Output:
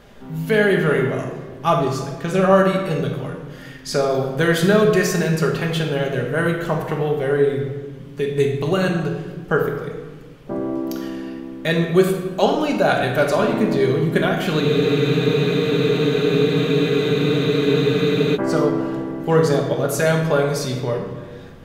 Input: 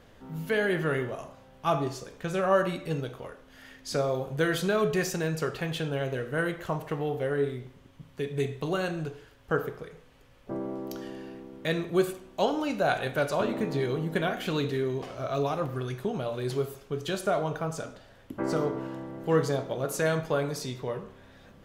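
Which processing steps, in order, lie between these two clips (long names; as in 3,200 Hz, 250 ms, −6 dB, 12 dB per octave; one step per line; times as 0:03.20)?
rectangular room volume 1,300 cubic metres, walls mixed, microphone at 1.3 metres
frozen spectrum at 0:14.64, 3.71 s
level +7.5 dB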